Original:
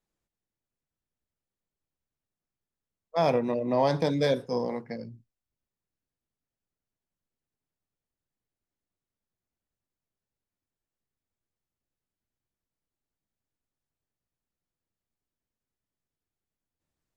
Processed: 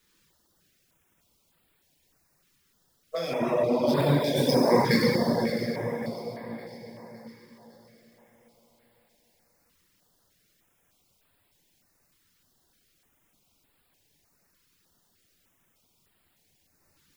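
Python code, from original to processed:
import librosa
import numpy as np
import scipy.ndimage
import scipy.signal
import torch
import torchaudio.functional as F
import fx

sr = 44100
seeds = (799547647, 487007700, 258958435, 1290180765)

p1 = scipy.ndimage.median_filter(x, 5, mode='constant')
p2 = fx.over_compress(p1, sr, threshold_db=-35.0, ratio=-1.0)
p3 = fx.tilt_eq(p2, sr, slope=3.0)
p4 = fx.rev_plate(p3, sr, seeds[0], rt60_s=4.3, hf_ratio=0.75, predelay_ms=0, drr_db=-7.5)
p5 = fx.dereverb_blind(p4, sr, rt60_s=0.94)
p6 = fx.low_shelf(p5, sr, hz=250.0, db=6.0)
p7 = p6 + fx.echo_split(p6, sr, split_hz=620.0, low_ms=398, high_ms=559, feedback_pct=52, wet_db=-13, dry=0)
p8 = fx.filter_held_notch(p7, sr, hz=3.3, low_hz=680.0, high_hz=6000.0)
y = F.gain(torch.from_numpy(p8), 9.0).numpy()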